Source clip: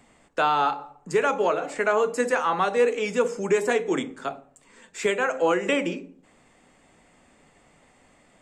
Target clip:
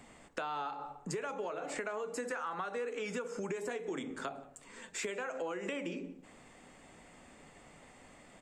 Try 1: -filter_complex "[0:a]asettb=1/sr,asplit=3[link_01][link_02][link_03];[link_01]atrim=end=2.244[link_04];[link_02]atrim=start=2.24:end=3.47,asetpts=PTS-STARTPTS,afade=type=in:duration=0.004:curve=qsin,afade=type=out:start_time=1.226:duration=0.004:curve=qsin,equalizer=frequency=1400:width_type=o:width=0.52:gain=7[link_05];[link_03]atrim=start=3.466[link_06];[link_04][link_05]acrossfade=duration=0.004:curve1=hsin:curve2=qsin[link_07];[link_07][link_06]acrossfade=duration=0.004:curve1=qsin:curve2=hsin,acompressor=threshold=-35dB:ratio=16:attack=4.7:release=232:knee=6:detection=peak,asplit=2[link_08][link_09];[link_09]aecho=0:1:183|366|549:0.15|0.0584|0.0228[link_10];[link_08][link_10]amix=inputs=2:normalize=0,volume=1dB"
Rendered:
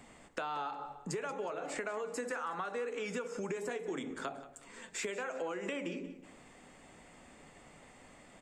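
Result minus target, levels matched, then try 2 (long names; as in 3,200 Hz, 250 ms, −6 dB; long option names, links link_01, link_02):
echo-to-direct +9.5 dB
-filter_complex "[0:a]asettb=1/sr,asplit=3[link_01][link_02][link_03];[link_01]atrim=end=2.244[link_04];[link_02]atrim=start=2.24:end=3.47,asetpts=PTS-STARTPTS,afade=type=in:duration=0.004:curve=qsin,afade=type=out:start_time=1.226:duration=0.004:curve=qsin,equalizer=frequency=1400:width_type=o:width=0.52:gain=7[link_05];[link_03]atrim=start=3.466[link_06];[link_04][link_05]acrossfade=duration=0.004:curve1=hsin:curve2=qsin[link_07];[link_07][link_06]acrossfade=duration=0.004:curve1=qsin:curve2=hsin,acompressor=threshold=-35dB:ratio=16:attack=4.7:release=232:knee=6:detection=peak,asplit=2[link_08][link_09];[link_09]aecho=0:1:183|366:0.0501|0.0195[link_10];[link_08][link_10]amix=inputs=2:normalize=0,volume=1dB"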